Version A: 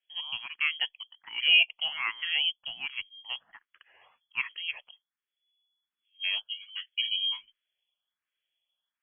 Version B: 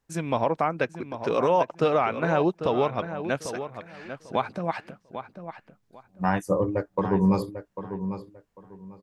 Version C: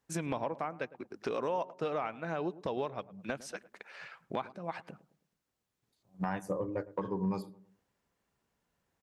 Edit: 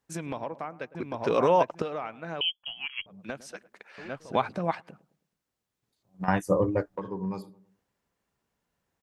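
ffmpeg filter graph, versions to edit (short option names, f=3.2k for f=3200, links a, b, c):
-filter_complex "[1:a]asplit=3[a][b][c];[2:a]asplit=5[d][e][f][g][h];[d]atrim=end=0.952[i];[a]atrim=start=0.948:end=1.822[j];[e]atrim=start=1.818:end=2.412[k];[0:a]atrim=start=2.408:end=3.062[l];[f]atrim=start=3.058:end=3.982[m];[b]atrim=start=3.978:end=4.752[n];[g]atrim=start=4.748:end=6.282[o];[c]atrim=start=6.278:end=6.962[p];[h]atrim=start=6.958[q];[i][j]acrossfade=d=0.004:c1=hsin:c2=hsin[r];[r][k]acrossfade=d=0.004:c1=hsin:c2=hsin[s];[s][l]acrossfade=d=0.004:c1=hsin:c2=hsin[t];[t][m]acrossfade=d=0.004:c1=hsin:c2=hsin[u];[u][n]acrossfade=d=0.004:c1=hsin:c2=hsin[v];[v][o]acrossfade=d=0.004:c1=hsin:c2=hsin[w];[w][p]acrossfade=d=0.004:c1=hsin:c2=hsin[x];[x][q]acrossfade=d=0.004:c1=hsin:c2=hsin"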